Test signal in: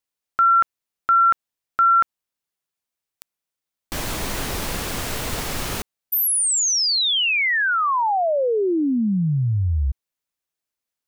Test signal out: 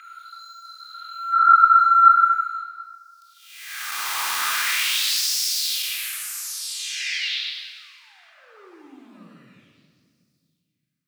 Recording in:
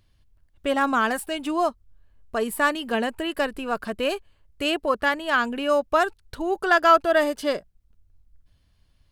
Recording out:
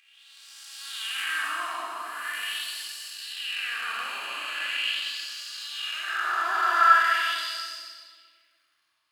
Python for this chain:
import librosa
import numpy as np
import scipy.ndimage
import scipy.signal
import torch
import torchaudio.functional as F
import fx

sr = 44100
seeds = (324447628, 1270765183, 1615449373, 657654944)

y = fx.spec_blur(x, sr, span_ms=686.0)
y = fx.peak_eq(y, sr, hz=570.0, db=-12.0, octaves=2.0)
y = fx.leveller(y, sr, passes=1)
y = fx.filter_lfo_highpass(y, sr, shape='sine', hz=0.42, low_hz=1000.0, high_hz=5200.0, q=3.4)
y = fx.room_shoebox(y, sr, seeds[0], volume_m3=3100.0, walls='mixed', distance_m=3.8)